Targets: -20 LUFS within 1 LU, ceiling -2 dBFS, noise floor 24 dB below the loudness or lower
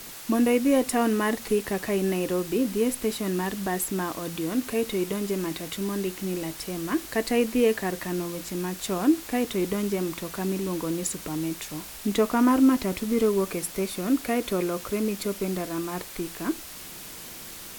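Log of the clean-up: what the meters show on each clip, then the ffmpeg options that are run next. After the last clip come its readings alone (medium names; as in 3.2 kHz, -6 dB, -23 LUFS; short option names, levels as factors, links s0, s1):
noise floor -41 dBFS; noise floor target -51 dBFS; loudness -26.5 LUFS; peak level -10.0 dBFS; loudness target -20.0 LUFS
-> -af "afftdn=nr=10:nf=-41"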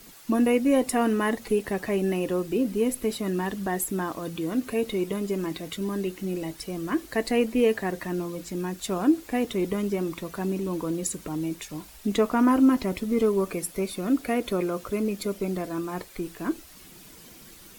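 noise floor -49 dBFS; noise floor target -51 dBFS
-> -af "afftdn=nr=6:nf=-49"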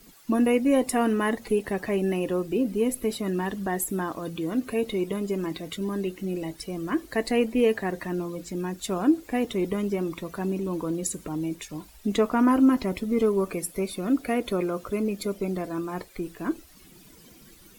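noise floor -52 dBFS; loudness -27.0 LUFS; peak level -10.0 dBFS; loudness target -20.0 LUFS
-> -af "volume=2.24"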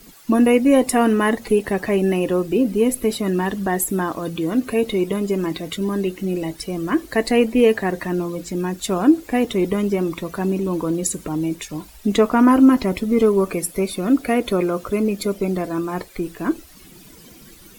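loudness -20.0 LUFS; peak level -3.0 dBFS; noise floor -45 dBFS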